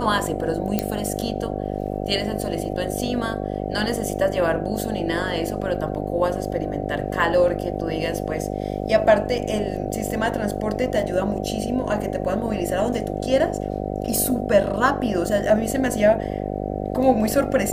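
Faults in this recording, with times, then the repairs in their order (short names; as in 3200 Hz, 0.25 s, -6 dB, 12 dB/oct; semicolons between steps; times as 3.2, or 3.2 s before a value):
buzz 50 Hz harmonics 15 -27 dBFS
0.79 pop -6 dBFS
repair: de-click; de-hum 50 Hz, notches 15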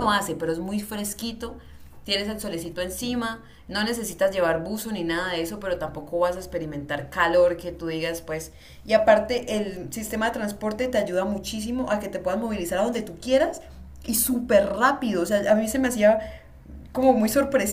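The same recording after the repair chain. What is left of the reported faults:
none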